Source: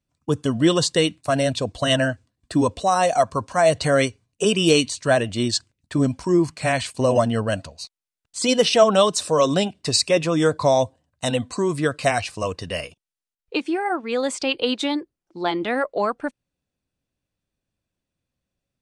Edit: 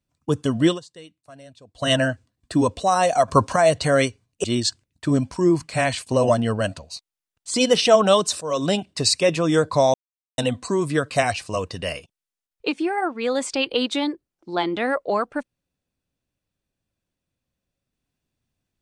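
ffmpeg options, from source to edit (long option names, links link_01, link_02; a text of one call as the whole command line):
ffmpeg -i in.wav -filter_complex "[0:a]asplit=9[link_01][link_02][link_03][link_04][link_05][link_06][link_07][link_08][link_09];[link_01]atrim=end=0.8,asetpts=PTS-STARTPTS,afade=type=out:start_time=0.66:duration=0.14:silence=0.0630957[link_10];[link_02]atrim=start=0.8:end=1.74,asetpts=PTS-STARTPTS,volume=-24dB[link_11];[link_03]atrim=start=1.74:end=3.282,asetpts=PTS-STARTPTS,afade=type=in:duration=0.14:silence=0.0630957[link_12];[link_04]atrim=start=3.278:end=3.562,asetpts=PTS-STARTPTS,volume=8.5dB[link_13];[link_05]atrim=start=3.558:end=4.442[link_14];[link_06]atrim=start=5.318:end=9.29,asetpts=PTS-STARTPTS,afade=type=out:start_time=3.968:duration=0.004:curve=hsin:silence=0.188365[link_15];[link_07]atrim=start=9.29:end=10.82,asetpts=PTS-STARTPTS,afade=type=in:duration=0.34:silence=0.188365,afade=type=out:start_time=1.526:duration=0.004:curve=hsin[link_16];[link_08]atrim=start=10.82:end=11.26,asetpts=PTS-STARTPTS,volume=0[link_17];[link_09]atrim=start=11.26,asetpts=PTS-STARTPTS,afade=type=in:duration=0.004:curve=hsin[link_18];[link_10][link_11][link_12]concat=n=3:v=0:a=1[link_19];[link_19][link_13]acrossfade=duration=0.004:curve1=hsin:curve2=hsin[link_20];[link_20][link_14]acrossfade=duration=0.004:curve1=hsin:curve2=hsin[link_21];[link_15][link_16][link_17][link_18]concat=n=4:v=0:a=1[link_22];[link_21][link_22]acrossfade=duration=0.004:curve1=hsin:curve2=hsin" out.wav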